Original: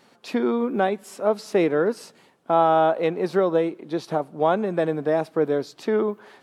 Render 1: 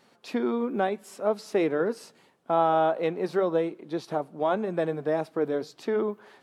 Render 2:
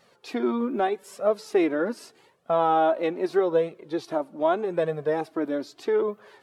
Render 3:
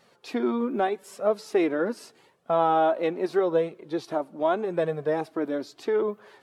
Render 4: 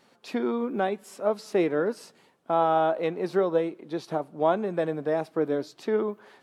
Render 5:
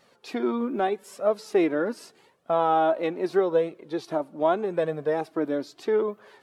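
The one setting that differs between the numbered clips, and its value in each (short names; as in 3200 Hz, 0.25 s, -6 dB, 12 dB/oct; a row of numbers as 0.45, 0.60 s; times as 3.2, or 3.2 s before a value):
flange, regen: -89, -2, -25, +89, +23%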